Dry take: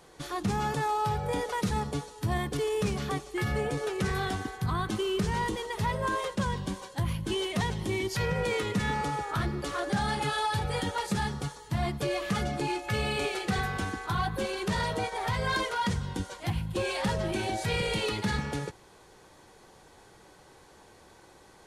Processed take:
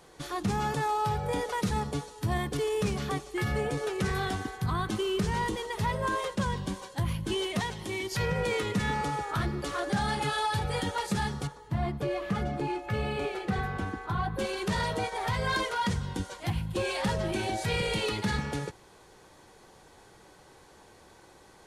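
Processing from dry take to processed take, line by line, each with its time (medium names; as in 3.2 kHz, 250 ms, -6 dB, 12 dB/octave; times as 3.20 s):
7.59–8.12 s: bass shelf 340 Hz -9 dB
11.47–14.39 s: peaking EQ 8.5 kHz -12.5 dB 2.9 oct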